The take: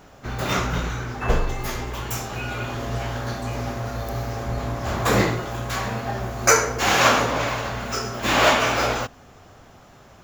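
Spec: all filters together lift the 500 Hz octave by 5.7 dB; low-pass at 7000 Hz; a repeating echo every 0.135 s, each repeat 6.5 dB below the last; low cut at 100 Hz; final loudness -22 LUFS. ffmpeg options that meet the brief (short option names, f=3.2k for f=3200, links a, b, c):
-af "highpass=100,lowpass=7k,equalizer=f=500:t=o:g=7,aecho=1:1:135|270|405|540|675|810:0.473|0.222|0.105|0.0491|0.0231|0.0109,volume=-1.5dB"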